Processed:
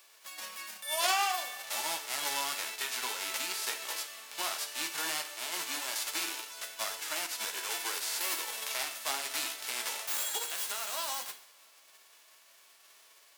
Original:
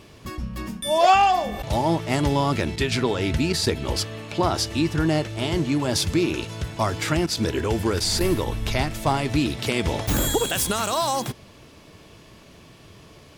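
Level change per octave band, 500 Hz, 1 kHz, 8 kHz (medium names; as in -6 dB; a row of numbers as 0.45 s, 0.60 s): -20.5 dB, -14.0 dB, -3.5 dB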